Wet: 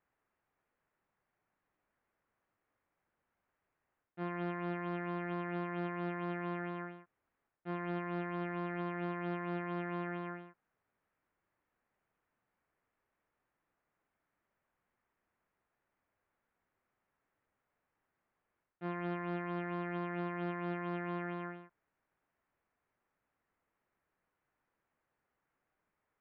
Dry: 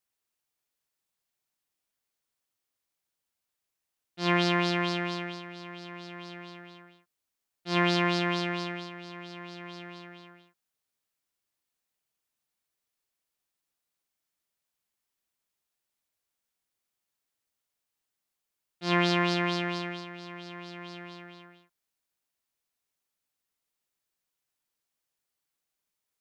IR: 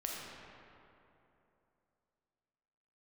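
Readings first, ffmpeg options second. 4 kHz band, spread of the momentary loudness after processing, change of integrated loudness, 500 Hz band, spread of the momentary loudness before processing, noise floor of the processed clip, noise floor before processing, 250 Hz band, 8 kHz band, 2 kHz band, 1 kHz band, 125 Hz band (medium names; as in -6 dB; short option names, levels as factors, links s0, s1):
-25.0 dB, 7 LU, -11.5 dB, -6.5 dB, 19 LU, under -85 dBFS, under -85 dBFS, -6.5 dB, under -25 dB, -11.0 dB, -7.5 dB, -6.5 dB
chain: -af "lowpass=f=1900:w=0.5412,lowpass=f=1900:w=1.3066,areverse,acompressor=threshold=0.01:ratio=5,areverse,alimiter=level_in=6.31:limit=0.0631:level=0:latency=1,volume=0.158,volume=3.16"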